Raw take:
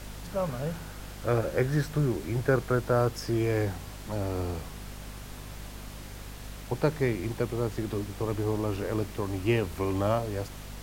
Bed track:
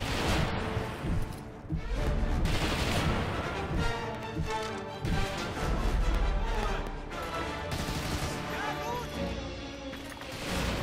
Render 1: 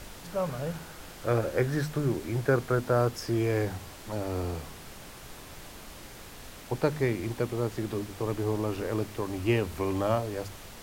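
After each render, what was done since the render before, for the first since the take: hum notches 50/100/150/200/250 Hz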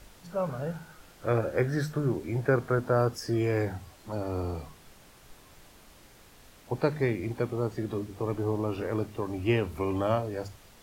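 noise print and reduce 9 dB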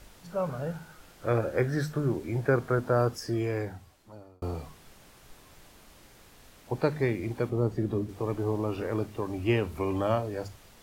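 3.11–4.42 s: fade out; 7.49–8.09 s: tilt shelf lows +5 dB, about 650 Hz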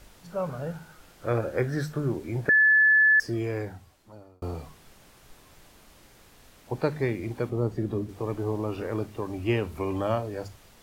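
2.49–3.20 s: bleep 1.73 kHz -15.5 dBFS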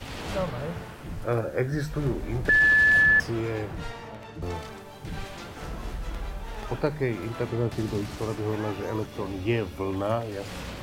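add bed track -5.5 dB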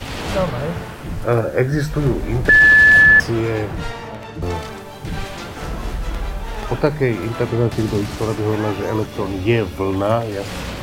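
trim +9.5 dB

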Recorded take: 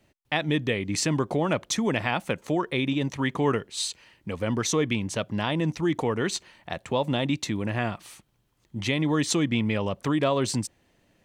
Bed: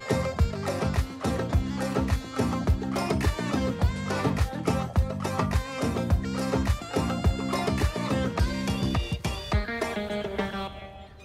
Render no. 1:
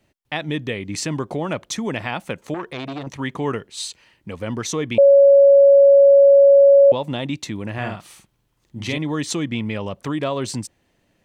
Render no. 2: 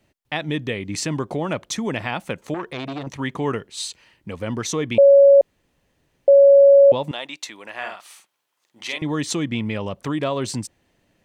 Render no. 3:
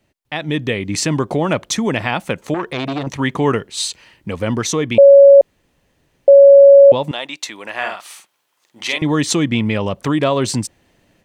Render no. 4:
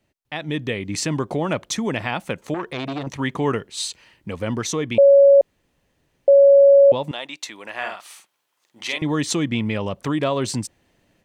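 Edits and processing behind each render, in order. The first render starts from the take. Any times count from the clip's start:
2.54–3.07 s: transformer saturation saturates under 1.3 kHz; 4.98–6.92 s: bleep 558 Hz -7 dBFS; 7.73–8.98 s: doubling 48 ms -3.5 dB
5.41–6.28 s: room tone; 7.11–9.02 s: high-pass 700 Hz
level rider gain up to 8 dB
trim -5.5 dB

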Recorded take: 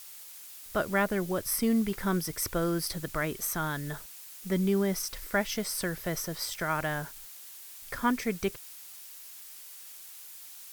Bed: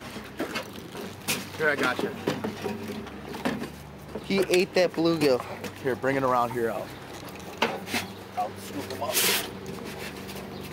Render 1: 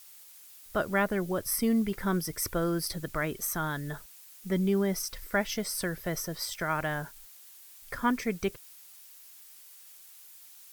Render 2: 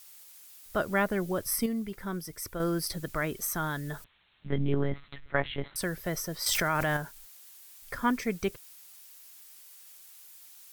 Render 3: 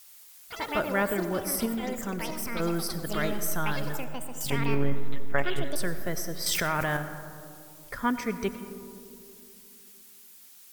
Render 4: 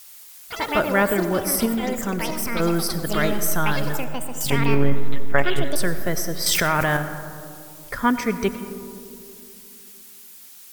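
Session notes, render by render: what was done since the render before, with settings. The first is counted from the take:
noise reduction 6 dB, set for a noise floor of -47 dBFS
1.66–2.60 s: gain -6.5 dB; 4.04–5.76 s: monotone LPC vocoder at 8 kHz 140 Hz; 6.46–6.97 s: level flattener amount 100%
ever faster or slower copies 94 ms, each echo +7 st, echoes 3, each echo -6 dB; algorithmic reverb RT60 2.6 s, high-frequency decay 0.25×, pre-delay 50 ms, DRR 10 dB
trim +7.5 dB

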